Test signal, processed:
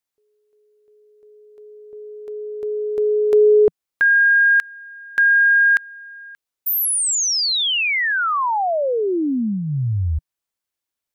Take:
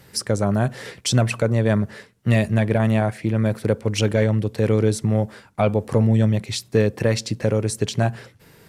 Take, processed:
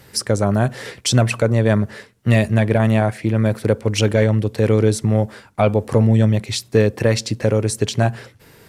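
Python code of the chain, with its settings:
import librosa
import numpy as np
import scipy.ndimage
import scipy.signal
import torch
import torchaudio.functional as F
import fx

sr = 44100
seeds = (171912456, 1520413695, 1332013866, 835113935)

y = fx.peak_eq(x, sr, hz=170.0, db=-5.0, octaves=0.36)
y = F.gain(torch.from_numpy(y), 3.5).numpy()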